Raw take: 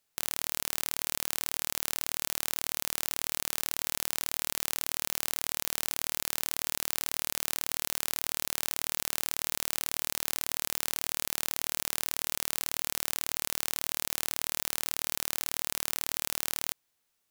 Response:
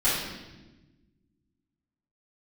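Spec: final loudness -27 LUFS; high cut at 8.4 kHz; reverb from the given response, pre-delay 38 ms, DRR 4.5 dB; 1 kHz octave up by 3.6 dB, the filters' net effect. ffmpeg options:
-filter_complex "[0:a]lowpass=8400,equalizer=f=1000:t=o:g=4.5,asplit=2[s0][s1];[1:a]atrim=start_sample=2205,adelay=38[s2];[s1][s2]afir=irnorm=-1:irlink=0,volume=0.126[s3];[s0][s3]amix=inputs=2:normalize=0,volume=2.24"

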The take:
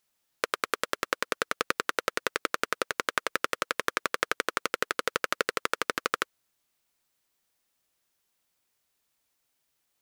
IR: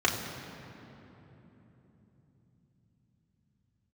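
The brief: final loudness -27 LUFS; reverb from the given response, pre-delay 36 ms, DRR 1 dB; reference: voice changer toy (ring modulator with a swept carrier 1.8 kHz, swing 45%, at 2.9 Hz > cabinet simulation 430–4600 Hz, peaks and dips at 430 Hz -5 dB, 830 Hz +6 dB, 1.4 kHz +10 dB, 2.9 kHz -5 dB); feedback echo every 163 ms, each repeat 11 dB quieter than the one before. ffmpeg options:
-filter_complex "[0:a]aecho=1:1:163|326|489:0.282|0.0789|0.0221,asplit=2[s0][s1];[1:a]atrim=start_sample=2205,adelay=36[s2];[s1][s2]afir=irnorm=-1:irlink=0,volume=0.2[s3];[s0][s3]amix=inputs=2:normalize=0,aeval=exprs='val(0)*sin(2*PI*1800*n/s+1800*0.45/2.9*sin(2*PI*2.9*n/s))':c=same,highpass=430,equalizer=f=430:t=q:w=4:g=-5,equalizer=f=830:t=q:w=4:g=6,equalizer=f=1400:t=q:w=4:g=10,equalizer=f=2900:t=q:w=4:g=-5,lowpass=f=4600:w=0.5412,lowpass=f=4600:w=1.3066,volume=1.41"

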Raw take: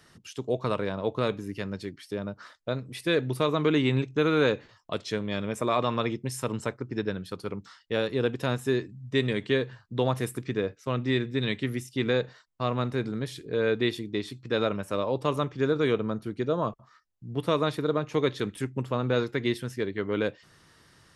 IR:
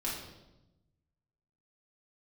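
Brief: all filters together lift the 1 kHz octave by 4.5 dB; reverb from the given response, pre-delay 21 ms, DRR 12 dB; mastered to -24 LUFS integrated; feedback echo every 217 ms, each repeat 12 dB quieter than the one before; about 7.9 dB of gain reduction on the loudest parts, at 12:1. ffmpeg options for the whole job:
-filter_complex "[0:a]equalizer=f=1000:t=o:g=5.5,acompressor=threshold=0.0501:ratio=12,aecho=1:1:217|434|651:0.251|0.0628|0.0157,asplit=2[s0][s1];[1:a]atrim=start_sample=2205,adelay=21[s2];[s1][s2]afir=irnorm=-1:irlink=0,volume=0.158[s3];[s0][s3]amix=inputs=2:normalize=0,volume=2.82"

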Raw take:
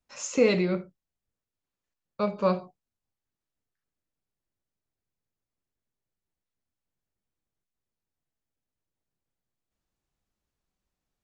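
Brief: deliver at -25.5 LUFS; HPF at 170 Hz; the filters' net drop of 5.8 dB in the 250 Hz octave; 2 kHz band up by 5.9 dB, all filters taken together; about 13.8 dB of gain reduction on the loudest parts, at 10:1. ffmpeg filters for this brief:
-af "highpass=170,equalizer=f=250:t=o:g=-6.5,equalizer=f=2000:t=o:g=7,acompressor=threshold=0.0282:ratio=10,volume=3.55"

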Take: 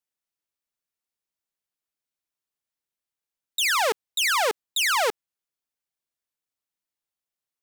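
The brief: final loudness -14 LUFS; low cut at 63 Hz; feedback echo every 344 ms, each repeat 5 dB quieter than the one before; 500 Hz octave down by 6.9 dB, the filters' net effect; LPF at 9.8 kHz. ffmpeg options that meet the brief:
-af "highpass=63,lowpass=9800,equalizer=f=500:t=o:g=-8.5,aecho=1:1:344|688|1032|1376|1720|2064|2408:0.562|0.315|0.176|0.0988|0.0553|0.031|0.0173,volume=3.16"

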